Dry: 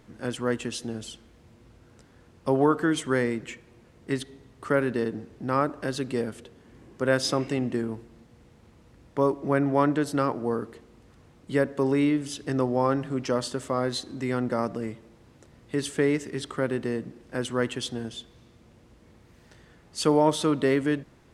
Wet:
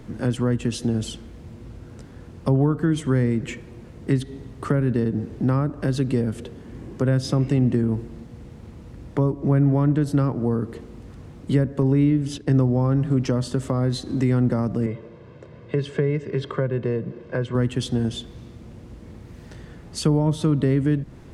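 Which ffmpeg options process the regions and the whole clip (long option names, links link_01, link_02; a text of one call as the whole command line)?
ffmpeg -i in.wav -filter_complex "[0:a]asettb=1/sr,asplit=3[link_01][link_02][link_03];[link_01]atrim=end=11.824[link_04];[link_02]atrim=start=11.82:end=12.55,asetpts=PTS-STARTPTS,afade=type=in:duration=0.004:curve=qsin,afade=type=out:start_time=0.726:duration=0.004:curve=qsin,agate=range=-11dB:threshold=-40dB:ratio=16:release=100:detection=peak,highshelf=frequency=6400:gain=-7,bandreject=frequency=1200:width=28[link_05];[link_03]atrim=start=12.546[link_06];[link_04][link_05]acrossfade=duration=0.004:curve1=hsin:curve2=qsin[link_07];[link_07][link_06]acrossfade=duration=0.004:curve1=qsin:curve2=hsin,asettb=1/sr,asplit=3[link_08][link_09][link_10];[link_08]atrim=end=14.864[link_11];[link_09]atrim=start=14.86:end=17.55,asetpts=PTS-STARTPTS,afade=type=in:duration=0.004:curve=qsin,afade=type=out:start_time=2.686:duration=0.004:curve=qsin,highpass=150,lowpass=3000,aecho=1:1:1.9:0.63,atrim=end_sample=118629[link_12];[link_10]atrim=start=17.546[link_13];[link_11][link_12]acrossfade=duration=0.004:curve1=hsin:curve2=qsin[link_14];[link_14][link_13]acrossfade=duration=0.004:curve1=qsin:curve2=hsin,acrossover=split=180[link_15][link_16];[link_16]acompressor=threshold=-35dB:ratio=6[link_17];[link_15][link_17]amix=inputs=2:normalize=0,lowshelf=frequency=420:gain=9.5,volume=6.5dB" out.wav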